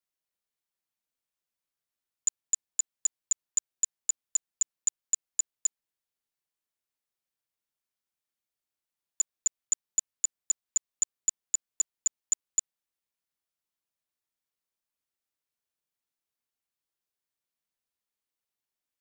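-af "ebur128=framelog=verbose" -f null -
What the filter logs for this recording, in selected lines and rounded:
Integrated loudness:
  I:         -30.4 LUFS
  Threshold: -40.4 LUFS
Loudness range:
  LRA:         7.8 LU
  Threshold: -52.5 LUFS
  LRA low:   -37.9 LUFS
  LRA high:  -30.1 LUFS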